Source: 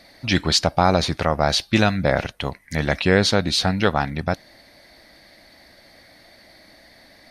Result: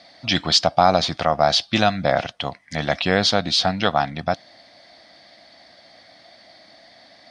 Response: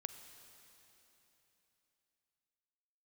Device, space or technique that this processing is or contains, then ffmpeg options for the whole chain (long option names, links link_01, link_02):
car door speaker: -af "highpass=110,equalizer=frequency=400:width_type=q:width=4:gain=-5,equalizer=frequency=700:width_type=q:width=4:gain=9,equalizer=frequency=1200:width_type=q:width=4:gain=4,equalizer=frequency=3300:width_type=q:width=4:gain=8,equalizer=frequency=5000:width_type=q:width=4:gain=6,lowpass=frequency=7900:width=0.5412,lowpass=frequency=7900:width=1.3066,volume=-2.5dB"